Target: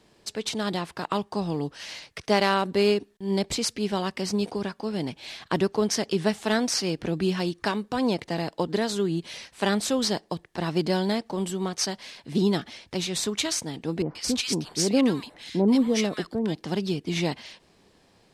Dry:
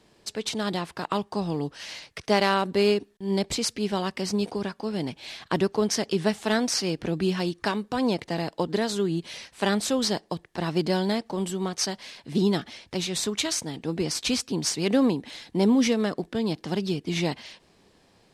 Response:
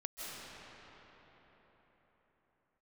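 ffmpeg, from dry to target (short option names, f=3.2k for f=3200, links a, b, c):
-filter_complex "[0:a]asettb=1/sr,asplit=3[a][b][c];[a]atrim=end=14.024[d];[b]atrim=start=14.02:end=16.55,asetpts=PTS-STARTPTS,afade=t=in:d=0.004:c=qsin,afade=t=out:st=2.526:d=0.004:c=qsin,acrossover=split=1200[e][f];[f]adelay=130[g];[e][g]amix=inputs=2:normalize=0,atrim=end_sample=111573[h];[c]atrim=start=16.546[i];[d][h]acrossfade=d=0.004:c1=hsin:c2=qsin[j];[j][i]acrossfade=d=0.004:c1=qsin:c2=hsin"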